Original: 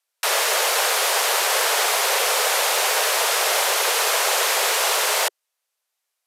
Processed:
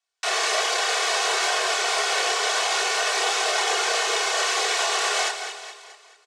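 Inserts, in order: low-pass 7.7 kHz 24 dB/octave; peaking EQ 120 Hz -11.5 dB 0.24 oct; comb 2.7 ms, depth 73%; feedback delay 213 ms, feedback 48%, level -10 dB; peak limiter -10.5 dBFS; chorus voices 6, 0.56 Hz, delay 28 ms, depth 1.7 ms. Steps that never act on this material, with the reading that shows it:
peaking EQ 120 Hz: input has nothing below 320 Hz

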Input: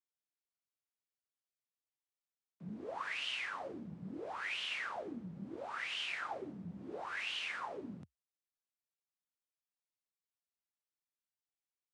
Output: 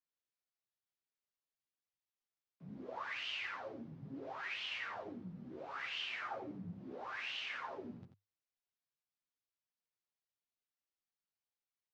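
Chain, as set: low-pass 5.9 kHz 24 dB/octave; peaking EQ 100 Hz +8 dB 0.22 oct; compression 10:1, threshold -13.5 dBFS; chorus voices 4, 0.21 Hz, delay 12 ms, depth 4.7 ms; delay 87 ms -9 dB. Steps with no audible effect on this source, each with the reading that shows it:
compression, threshold -13.5 dBFS: peak at its input -27.5 dBFS

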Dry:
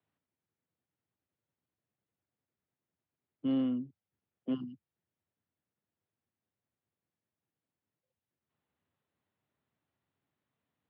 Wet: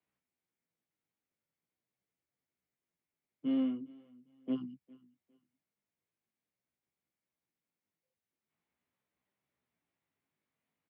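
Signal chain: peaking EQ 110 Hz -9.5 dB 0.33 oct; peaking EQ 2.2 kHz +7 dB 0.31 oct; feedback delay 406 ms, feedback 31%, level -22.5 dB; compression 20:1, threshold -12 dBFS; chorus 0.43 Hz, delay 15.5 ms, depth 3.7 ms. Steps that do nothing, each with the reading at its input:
compression, threshold -12 dBFS: peak at its input -23.5 dBFS

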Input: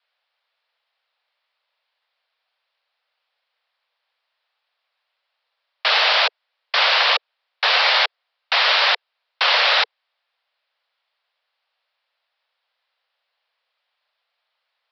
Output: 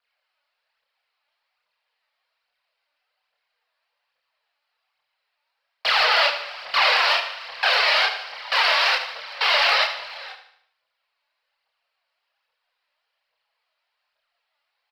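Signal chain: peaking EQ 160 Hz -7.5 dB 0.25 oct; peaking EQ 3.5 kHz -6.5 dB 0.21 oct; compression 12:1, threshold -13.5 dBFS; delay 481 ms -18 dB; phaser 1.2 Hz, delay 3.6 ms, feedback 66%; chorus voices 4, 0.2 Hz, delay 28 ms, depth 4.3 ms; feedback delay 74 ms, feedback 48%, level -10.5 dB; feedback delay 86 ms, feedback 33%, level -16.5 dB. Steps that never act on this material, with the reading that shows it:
peaking EQ 160 Hz: input has nothing below 380 Hz

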